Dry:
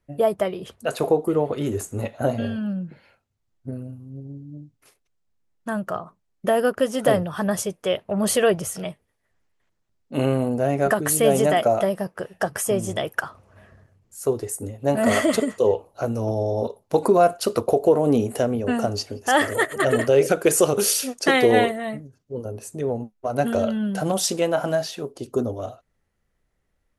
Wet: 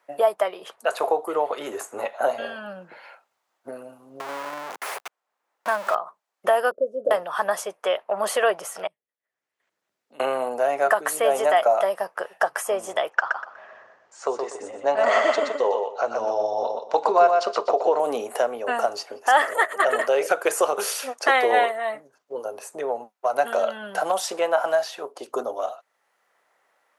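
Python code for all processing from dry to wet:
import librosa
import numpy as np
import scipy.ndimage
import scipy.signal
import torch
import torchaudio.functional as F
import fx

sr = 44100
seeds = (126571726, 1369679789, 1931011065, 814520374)

y = fx.chain(x, sr, fx.zero_step(step_db=-28.5),
    fx.highpass(hz=170.0, slope=12), at=(4.2, 5.95))
y = fx.chain(y, sr, fx.cvsd(bps=64000),
    fx.ellip_lowpass(hz=550.0, order=4, stop_db=40), at=(6.71, 7.11))
y = fx.chain(y, sr, fx.tone_stack(knobs='10-0-1'),
    fx.band_squash(depth_pct=70), at=(8.87, 10.2))
y = fx.chain(y, sr, fx.cheby2_lowpass(hz=11000.0, order=4, stop_db=40),
    fx.echo_feedback(ms=122, feedback_pct=21, wet_db=-5.0), at=(13.1, 18.0))
y = scipy.signal.sosfilt(scipy.signal.butter(2, 650.0, 'highpass', fs=sr, output='sos'), y)
y = fx.peak_eq(y, sr, hz=910.0, db=11.5, octaves=2.3)
y = fx.band_squash(y, sr, depth_pct=40)
y = y * librosa.db_to_amplitude(-4.5)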